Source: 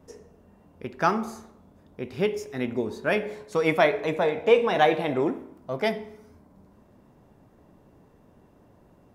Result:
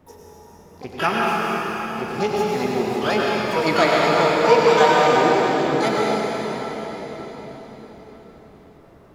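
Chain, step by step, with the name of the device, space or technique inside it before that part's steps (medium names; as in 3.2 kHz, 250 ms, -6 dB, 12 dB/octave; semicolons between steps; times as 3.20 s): shimmer-style reverb (harmony voices +12 st -5 dB; reverberation RT60 5.1 s, pre-delay 87 ms, DRR -4.5 dB)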